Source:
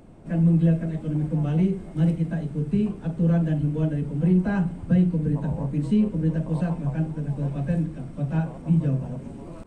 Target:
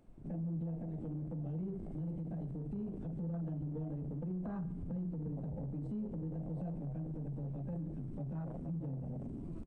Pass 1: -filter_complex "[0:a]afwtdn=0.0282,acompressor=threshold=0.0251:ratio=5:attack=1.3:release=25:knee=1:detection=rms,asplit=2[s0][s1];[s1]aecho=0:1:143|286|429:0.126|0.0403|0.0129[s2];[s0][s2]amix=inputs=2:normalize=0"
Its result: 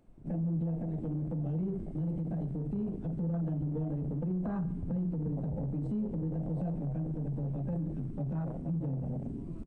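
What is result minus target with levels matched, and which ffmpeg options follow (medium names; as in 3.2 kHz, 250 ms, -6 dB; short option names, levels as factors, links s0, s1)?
compression: peak gain reduction -6.5 dB
-filter_complex "[0:a]afwtdn=0.0282,acompressor=threshold=0.01:ratio=5:attack=1.3:release=25:knee=1:detection=rms,asplit=2[s0][s1];[s1]aecho=0:1:143|286|429:0.126|0.0403|0.0129[s2];[s0][s2]amix=inputs=2:normalize=0"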